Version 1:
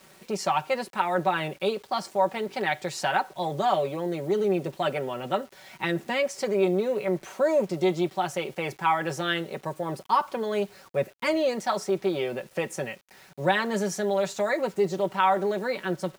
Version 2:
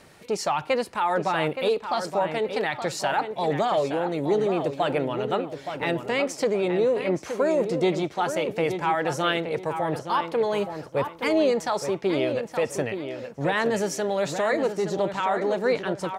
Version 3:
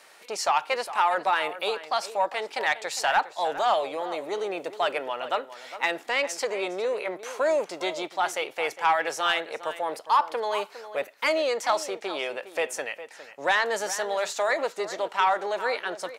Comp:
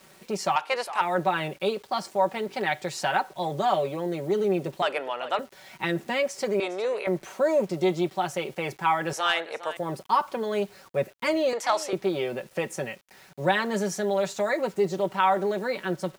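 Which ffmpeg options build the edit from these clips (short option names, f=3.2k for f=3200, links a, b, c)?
-filter_complex "[2:a]asplit=5[a][b][c][d][e];[0:a]asplit=6[f][g][h][i][j][k];[f]atrim=end=0.562[l];[a]atrim=start=0.558:end=1.012[m];[g]atrim=start=1.008:end=4.822[n];[b]atrim=start=4.818:end=5.392[o];[h]atrim=start=5.388:end=6.602[p];[c]atrim=start=6.598:end=7.072[q];[i]atrim=start=7.068:end=9.132[r];[d]atrim=start=9.128:end=9.772[s];[j]atrim=start=9.768:end=11.532[t];[e]atrim=start=11.528:end=11.932[u];[k]atrim=start=11.928[v];[l][m]acrossfade=d=0.004:c1=hsin:c2=hsin[w];[w][n]acrossfade=d=0.004:c1=hsin:c2=hsin[x];[x][o]acrossfade=d=0.004:c1=hsin:c2=hsin[y];[y][p]acrossfade=d=0.004:c1=hsin:c2=hsin[z];[z][q]acrossfade=d=0.004:c1=hsin:c2=hsin[aa];[aa][r]acrossfade=d=0.004:c1=hsin:c2=hsin[ab];[ab][s]acrossfade=d=0.004:c1=hsin:c2=hsin[ac];[ac][t]acrossfade=d=0.004:c1=hsin:c2=hsin[ad];[ad][u]acrossfade=d=0.004:c1=hsin:c2=hsin[ae];[ae][v]acrossfade=d=0.004:c1=hsin:c2=hsin"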